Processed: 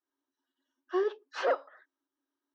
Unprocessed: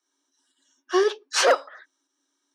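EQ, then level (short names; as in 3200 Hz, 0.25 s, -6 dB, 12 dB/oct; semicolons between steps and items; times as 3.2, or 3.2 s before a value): air absorption 61 m; tape spacing loss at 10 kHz 29 dB; notch 2300 Hz, Q 17; -7.0 dB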